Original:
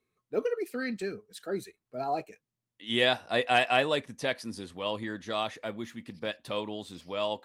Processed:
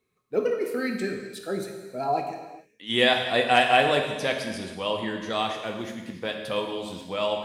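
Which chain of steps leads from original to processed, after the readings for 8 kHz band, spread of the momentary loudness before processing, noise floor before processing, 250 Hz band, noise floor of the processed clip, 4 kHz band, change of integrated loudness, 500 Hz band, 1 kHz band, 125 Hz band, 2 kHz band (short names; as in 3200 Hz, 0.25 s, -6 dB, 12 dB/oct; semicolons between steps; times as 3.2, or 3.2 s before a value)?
+5.5 dB, 14 LU, under -85 dBFS, +5.0 dB, -66 dBFS, +5.5 dB, +5.0 dB, +5.0 dB, +6.5 dB, +5.0 dB, +5.5 dB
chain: non-linear reverb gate 0.47 s falling, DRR 2.5 dB; gain +3.5 dB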